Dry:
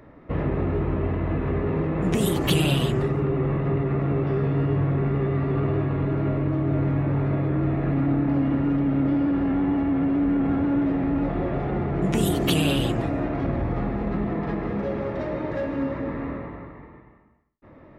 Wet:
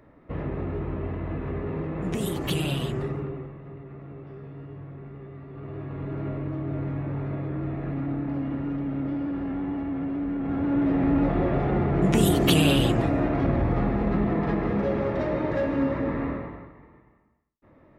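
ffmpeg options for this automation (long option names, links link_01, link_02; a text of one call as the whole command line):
ffmpeg -i in.wav -af "volume=14dB,afade=type=out:start_time=3.12:duration=0.4:silence=0.251189,afade=type=in:start_time=5.52:duration=0.69:silence=0.281838,afade=type=in:start_time=10.41:duration=0.68:silence=0.354813,afade=type=out:start_time=16.24:duration=0.49:silence=0.354813" out.wav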